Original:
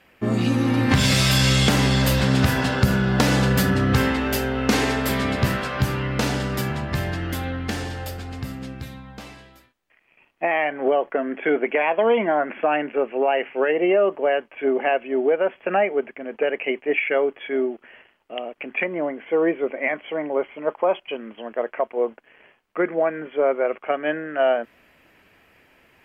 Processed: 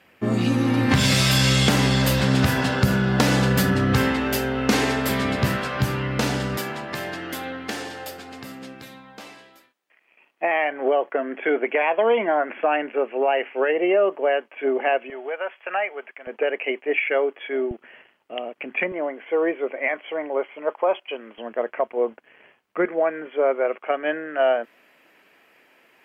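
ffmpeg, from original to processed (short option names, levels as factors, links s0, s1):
-af "asetnsamples=n=441:p=0,asendcmd='6.57 highpass f 290;15.1 highpass f 880;16.27 highpass f 320;17.71 highpass f 120;18.92 highpass f 360;21.38 highpass f 100;22.85 highpass f 280',highpass=81"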